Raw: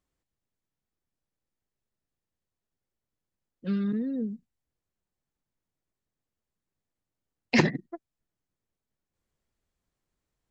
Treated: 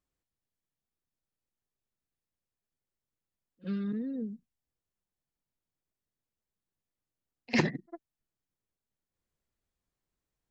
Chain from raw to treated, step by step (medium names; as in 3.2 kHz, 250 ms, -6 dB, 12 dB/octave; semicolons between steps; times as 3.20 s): pre-echo 52 ms -21.5 dB; trim -5 dB